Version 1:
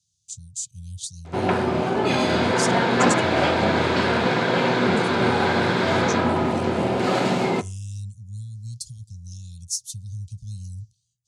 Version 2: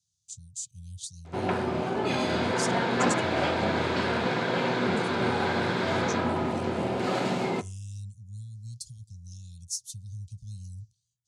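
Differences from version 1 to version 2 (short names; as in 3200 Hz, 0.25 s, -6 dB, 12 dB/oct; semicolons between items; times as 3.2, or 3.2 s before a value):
speech -6.0 dB; background -6.5 dB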